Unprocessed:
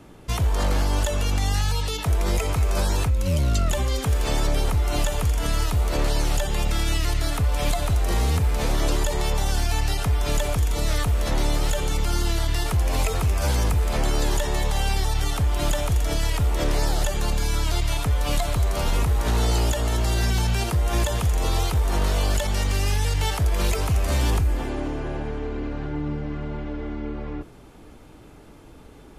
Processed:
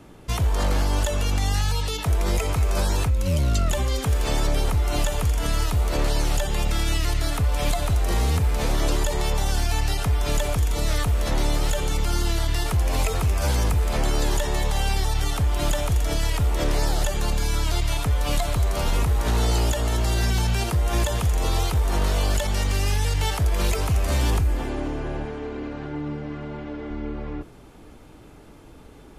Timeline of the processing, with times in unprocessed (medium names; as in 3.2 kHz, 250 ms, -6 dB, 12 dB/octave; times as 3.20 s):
25.25–26.91 s: high-pass 140 Hz 6 dB/octave